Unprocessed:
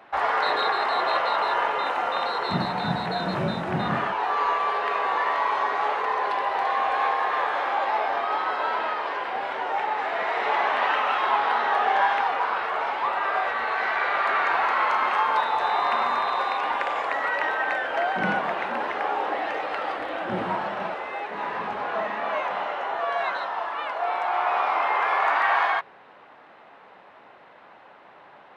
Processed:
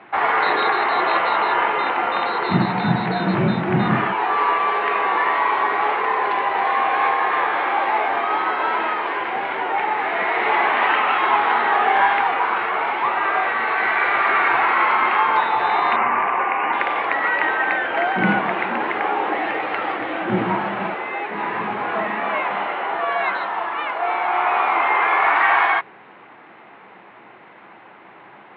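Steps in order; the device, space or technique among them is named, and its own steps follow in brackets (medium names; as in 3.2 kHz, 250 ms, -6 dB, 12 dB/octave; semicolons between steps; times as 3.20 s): 15.96–16.73 s: steep low-pass 2.9 kHz 72 dB/octave; guitar cabinet (cabinet simulation 96–3500 Hz, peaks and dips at 120 Hz +8 dB, 200 Hz +6 dB, 340 Hz +7 dB, 580 Hz -5 dB, 2.2 kHz +5 dB); trim +5 dB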